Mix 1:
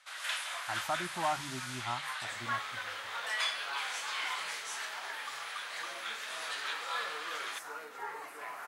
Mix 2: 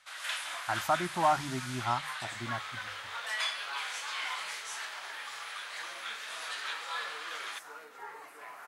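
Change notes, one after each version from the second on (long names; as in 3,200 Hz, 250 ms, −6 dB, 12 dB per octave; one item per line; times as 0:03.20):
speech +6.5 dB
second sound −4.0 dB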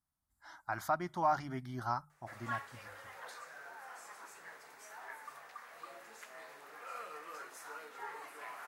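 speech −4.5 dB
first sound: muted
reverb: off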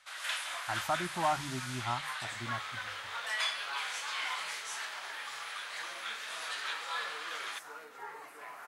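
first sound: unmuted
reverb: on, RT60 0.35 s
master: add low-shelf EQ 140 Hz +5.5 dB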